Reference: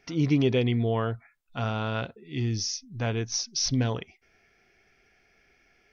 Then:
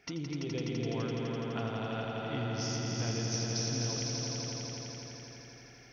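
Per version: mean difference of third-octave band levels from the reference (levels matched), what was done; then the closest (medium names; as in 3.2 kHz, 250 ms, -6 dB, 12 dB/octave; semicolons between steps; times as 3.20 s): 11.5 dB: high-pass 42 Hz; compression 10:1, threshold -36 dBFS, peak gain reduction 18 dB; echo with a slow build-up 84 ms, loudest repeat 5, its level -5 dB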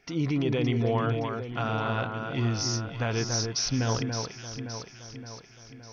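8.0 dB: dynamic bell 1.2 kHz, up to +6 dB, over -44 dBFS, Q 0.85; peak limiter -19 dBFS, peak gain reduction 7.5 dB; echo whose repeats swap between lows and highs 284 ms, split 1.8 kHz, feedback 73%, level -4.5 dB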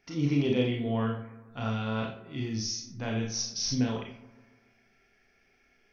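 5.0 dB: peaking EQ 220 Hz +2 dB; on a send: bucket-brigade echo 143 ms, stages 2048, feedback 55%, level -17.5 dB; on the sum: Schroeder reverb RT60 0.35 s, combs from 28 ms, DRR -1 dB; trim -6.5 dB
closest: third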